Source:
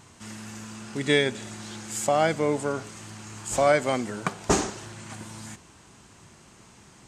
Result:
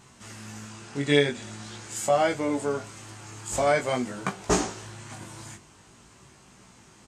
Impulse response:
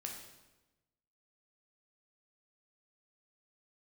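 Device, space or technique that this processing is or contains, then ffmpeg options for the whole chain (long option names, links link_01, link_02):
double-tracked vocal: -filter_complex "[0:a]asplit=2[link_01][link_02];[link_02]adelay=21,volume=-11dB[link_03];[link_01][link_03]amix=inputs=2:normalize=0,flanger=delay=15.5:depth=5.6:speed=0.47,asettb=1/sr,asplit=3[link_04][link_05][link_06];[link_04]atrim=end=0.694[link_07];[link_05]atrim=start=0.69:end=1.96,asetpts=PTS-STARTPTS,afade=type=in:duration=0.004:curve=qsin,afade=type=out:start_time=1.266:duration=0.004:curve=qsin,lowpass=10000[link_08];[link_06]atrim=start=1.956[link_09];[link_07][link_08]acrossfade=duration=0.004:curve1=hsin:curve2=qsin[link_10];[link_10][link_09]acrossfade=duration=0.004:curve1=qsin:curve2=hsin,volume=1.5dB"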